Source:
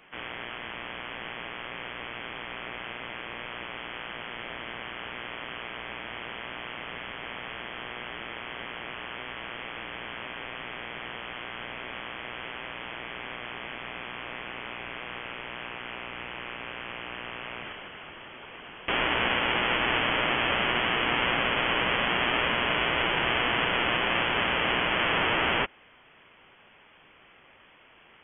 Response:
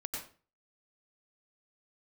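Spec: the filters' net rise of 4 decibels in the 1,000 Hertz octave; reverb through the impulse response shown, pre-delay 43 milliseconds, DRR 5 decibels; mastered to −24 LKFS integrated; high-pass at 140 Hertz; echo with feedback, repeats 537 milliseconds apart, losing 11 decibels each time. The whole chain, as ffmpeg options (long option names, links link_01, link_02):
-filter_complex "[0:a]highpass=140,equalizer=frequency=1000:width_type=o:gain=5,aecho=1:1:537|1074|1611:0.282|0.0789|0.0221,asplit=2[link_01][link_02];[1:a]atrim=start_sample=2205,adelay=43[link_03];[link_02][link_03]afir=irnorm=-1:irlink=0,volume=-6dB[link_04];[link_01][link_04]amix=inputs=2:normalize=0,volume=3dB"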